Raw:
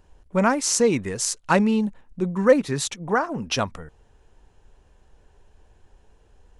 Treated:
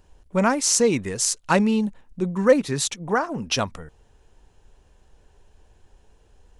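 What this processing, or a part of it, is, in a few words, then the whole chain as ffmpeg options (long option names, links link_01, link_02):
exciter from parts: -filter_complex "[0:a]asplit=2[link_01][link_02];[link_02]highpass=2200,asoftclip=type=tanh:threshold=-13.5dB,volume=-7dB[link_03];[link_01][link_03]amix=inputs=2:normalize=0"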